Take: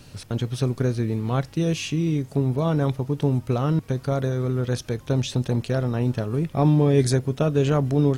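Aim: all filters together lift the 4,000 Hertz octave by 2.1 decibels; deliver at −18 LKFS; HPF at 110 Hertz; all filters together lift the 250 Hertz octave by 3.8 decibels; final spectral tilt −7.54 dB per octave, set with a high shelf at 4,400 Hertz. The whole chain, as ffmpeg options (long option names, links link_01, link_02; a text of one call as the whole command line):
ffmpeg -i in.wav -af "highpass=110,equalizer=frequency=250:width_type=o:gain=5.5,equalizer=frequency=4000:width_type=o:gain=6.5,highshelf=frequency=4400:gain=-7.5,volume=4dB" out.wav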